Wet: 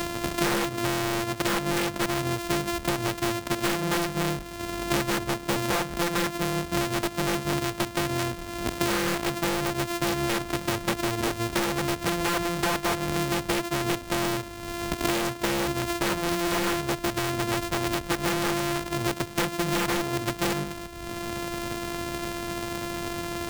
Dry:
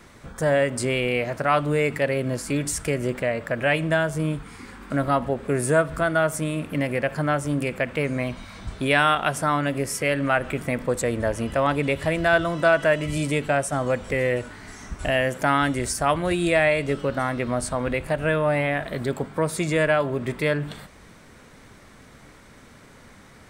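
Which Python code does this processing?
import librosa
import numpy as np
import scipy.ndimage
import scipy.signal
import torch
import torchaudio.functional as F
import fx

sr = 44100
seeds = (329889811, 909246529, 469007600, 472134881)

y = np.r_[np.sort(x[:len(x) // 128 * 128].reshape(-1, 128), axis=1).ravel(), x[len(x) // 128 * 128:]]
y = (np.mod(10.0 ** (16.0 / 20.0) * y + 1.0, 2.0) - 1.0) / 10.0 ** (16.0 / 20.0)
y = fx.band_squash(y, sr, depth_pct=100)
y = F.gain(torch.from_numpy(y), -3.5).numpy()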